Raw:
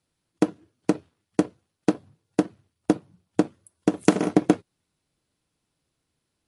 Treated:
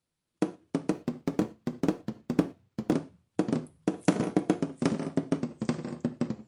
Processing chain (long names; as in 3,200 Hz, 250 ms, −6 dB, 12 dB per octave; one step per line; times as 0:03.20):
delay with pitch and tempo change per echo 273 ms, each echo −2 semitones, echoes 3
reverb whose tail is shaped and stops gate 140 ms falling, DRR 11 dB
0:00.91–0:02.92: windowed peak hold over 3 samples
level −7 dB